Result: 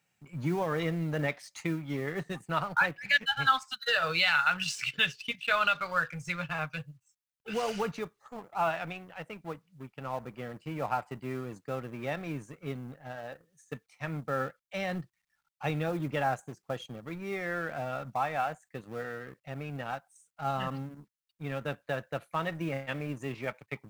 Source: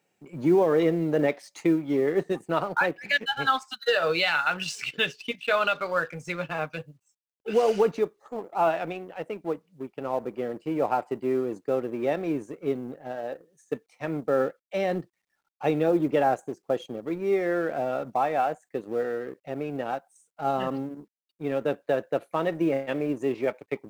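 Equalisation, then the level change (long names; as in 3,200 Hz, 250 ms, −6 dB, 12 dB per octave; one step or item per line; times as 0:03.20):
drawn EQ curve 130 Hz 0 dB, 370 Hz −18 dB, 1,300 Hz −4 dB
+3.5 dB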